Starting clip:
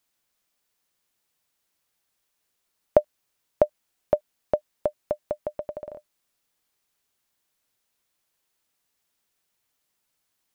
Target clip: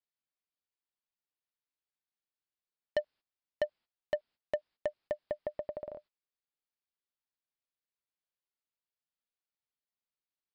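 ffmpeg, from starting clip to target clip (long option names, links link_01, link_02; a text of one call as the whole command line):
ffmpeg -i in.wav -af "aresample=11025,asoftclip=type=tanh:threshold=-20dB,aresample=44100,agate=range=-16dB:threshold=-53dB:ratio=16:detection=peak,volume=-4dB" out.wav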